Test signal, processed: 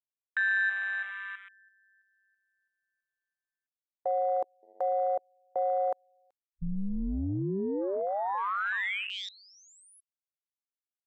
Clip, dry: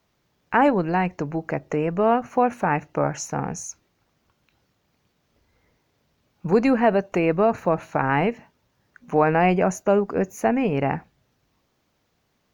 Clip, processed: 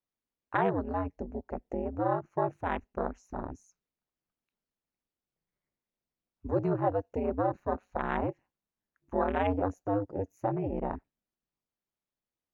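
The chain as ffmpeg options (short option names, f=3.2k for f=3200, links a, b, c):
-filter_complex "[0:a]aeval=exprs='val(0)*sin(2*PI*97*n/s)':c=same,acrossover=split=2600[a][b];[b]acompressor=threshold=-34dB:ratio=4:attack=1:release=60[c];[a][c]amix=inputs=2:normalize=0,afwtdn=0.0398,volume=-7dB"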